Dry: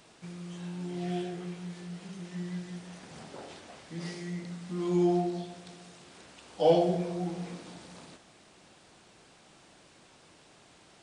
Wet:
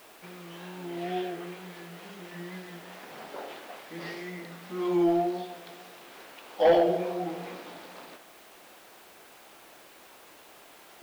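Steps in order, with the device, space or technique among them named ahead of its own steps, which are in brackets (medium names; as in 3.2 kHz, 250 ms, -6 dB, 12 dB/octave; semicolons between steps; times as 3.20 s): tape answering machine (band-pass 390–3100 Hz; saturation -21 dBFS, distortion -14 dB; wow and flutter; white noise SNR 25 dB); trim +7 dB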